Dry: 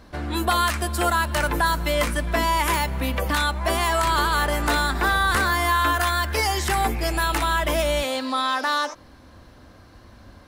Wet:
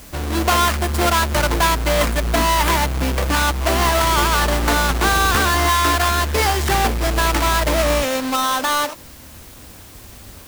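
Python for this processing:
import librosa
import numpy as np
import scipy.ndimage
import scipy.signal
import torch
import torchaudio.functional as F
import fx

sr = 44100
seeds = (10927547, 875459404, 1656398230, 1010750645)

p1 = fx.halfwave_hold(x, sr)
p2 = fx.quant_dither(p1, sr, seeds[0], bits=6, dither='triangular')
p3 = p1 + (p2 * 10.0 ** (-3.0 / 20.0))
y = p3 * 10.0 ** (-4.5 / 20.0)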